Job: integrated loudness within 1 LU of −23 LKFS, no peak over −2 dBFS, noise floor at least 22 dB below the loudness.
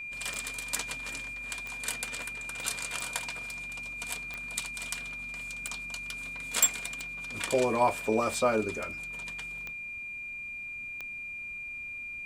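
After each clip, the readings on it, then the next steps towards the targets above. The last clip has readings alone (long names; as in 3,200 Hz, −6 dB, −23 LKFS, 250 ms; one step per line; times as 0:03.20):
number of clicks 9; interfering tone 2,400 Hz; level of the tone −37 dBFS; integrated loudness −32.5 LKFS; sample peak −10.5 dBFS; target loudness −23.0 LKFS
→ click removal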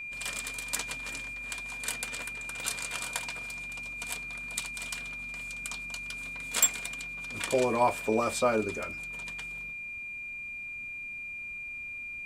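number of clicks 0; interfering tone 2,400 Hz; level of the tone −37 dBFS
→ notch filter 2,400 Hz, Q 30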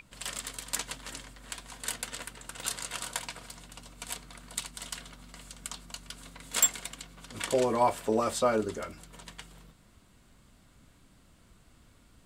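interfering tone none found; integrated loudness −32.5 LKFS; sample peak −10.5 dBFS; target loudness −23.0 LKFS
→ level +9.5 dB
brickwall limiter −2 dBFS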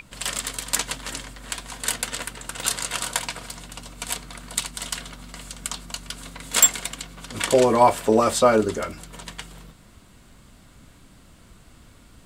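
integrated loudness −23.5 LKFS; sample peak −2.0 dBFS; background noise floor −51 dBFS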